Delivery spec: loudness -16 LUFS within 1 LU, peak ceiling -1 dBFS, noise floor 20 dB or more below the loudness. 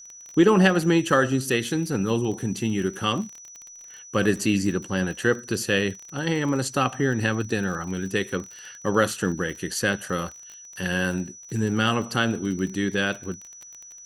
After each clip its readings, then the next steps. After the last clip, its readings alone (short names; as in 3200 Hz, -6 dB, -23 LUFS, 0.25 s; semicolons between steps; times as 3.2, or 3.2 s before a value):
ticks 33/s; steady tone 5900 Hz; tone level -42 dBFS; loudness -24.5 LUFS; peak -5.5 dBFS; loudness target -16.0 LUFS
-> de-click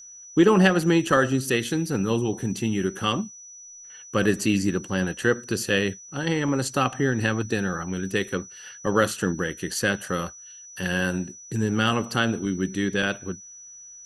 ticks 0/s; steady tone 5900 Hz; tone level -42 dBFS
-> notch 5900 Hz, Q 30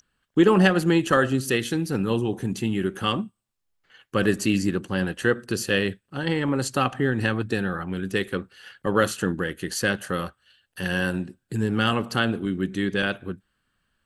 steady tone none; loudness -24.5 LUFS; peak -5.5 dBFS; loudness target -16.0 LUFS
-> gain +8.5 dB; limiter -1 dBFS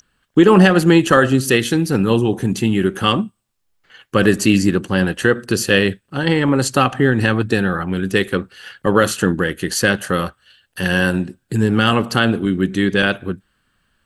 loudness -16.5 LUFS; peak -1.0 dBFS; noise floor -69 dBFS